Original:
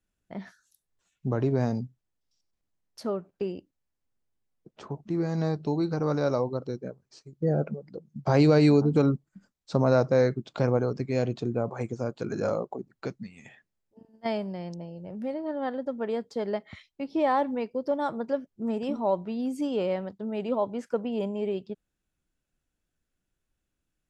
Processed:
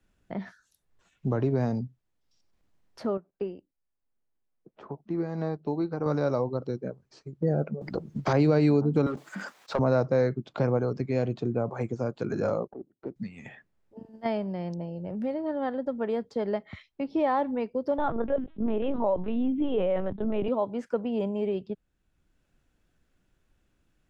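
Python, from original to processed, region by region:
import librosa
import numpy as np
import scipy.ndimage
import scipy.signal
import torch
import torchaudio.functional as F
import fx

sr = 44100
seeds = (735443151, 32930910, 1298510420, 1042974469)

y = fx.chain(x, sr, fx.lowpass(hz=2200.0, slope=6),
    fx.peak_eq(hz=83.0, db=-8.5, octaves=2.3),
    fx.upward_expand(threshold_db=-48.0, expansion=1.5), at=(3.17, 6.06))
y = fx.chain(y, sr, fx.peak_eq(hz=370.0, db=4.0, octaves=0.37),
    fx.spectral_comp(ratio=2.0), at=(7.81, 8.33))
y = fx.chain(y, sr, fx.highpass(hz=690.0, slope=12),
    fx.leveller(passes=2),
    fx.sustainer(db_per_s=29.0), at=(9.06, 9.79))
y = fx.chain(y, sr, fx.halfwave_gain(db=-12.0),
    fx.bandpass_q(hz=330.0, q=2.1), at=(12.67, 13.16))
y = fx.chain(y, sr, fx.lpc_vocoder(seeds[0], excitation='pitch_kept', order=10),
    fx.env_flatten(amount_pct=50), at=(17.98, 20.48))
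y = fx.high_shelf(y, sr, hz=5300.0, db=-11.5)
y = fx.band_squash(y, sr, depth_pct=40)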